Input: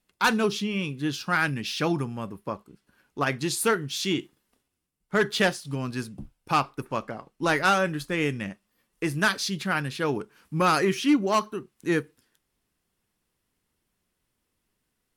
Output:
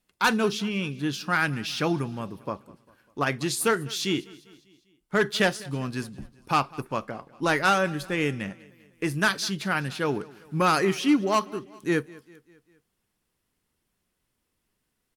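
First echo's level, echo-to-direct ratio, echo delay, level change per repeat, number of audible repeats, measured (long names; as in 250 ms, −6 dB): −22.0 dB, −20.5 dB, 199 ms, −5.5 dB, 3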